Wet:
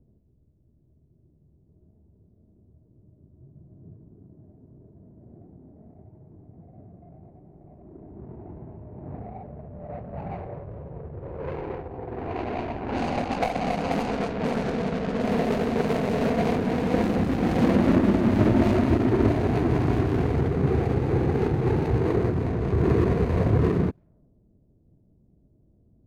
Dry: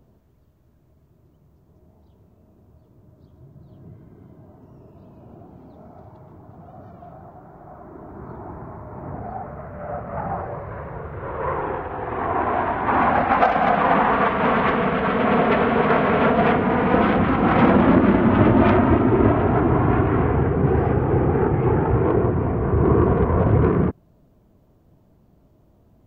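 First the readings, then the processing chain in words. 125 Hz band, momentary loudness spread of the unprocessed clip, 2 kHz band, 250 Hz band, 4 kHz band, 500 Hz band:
-3.5 dB, 17 LU, -10.5 dB, -4.0 dB, -3.5 dB, -5.5 dB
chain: median filter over 41 samples; level-controlled noise filter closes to 410 Hz, open at -17.5 dBFS; trim -3.5 dB

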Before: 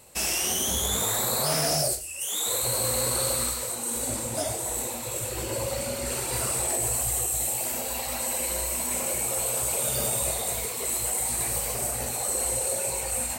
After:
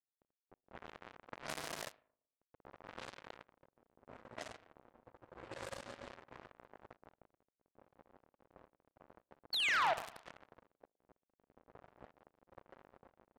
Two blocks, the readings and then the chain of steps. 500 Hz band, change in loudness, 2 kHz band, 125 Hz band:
-20.0 dB, -14.5 dB, -6.5 dB, -27.5 dB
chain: dead-time distortion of 0.29 ms; painted sound fall, 9.52–9.94 s, 600–4700 Hz -23 dBFS; spring tank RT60 1.5 s, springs 38/57 ms, chirp 35 ms, DRR 6.5 dB; power-law waveshaper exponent 2; bass shelf 170 Hz -8 dB; level-controlled noise filter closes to 520 Hz, open at -38 dBFS; saturation -18 dBFS, distortion -23 dB; treble shelf 8.5 kHz -11.5 dB; trim -1 dB

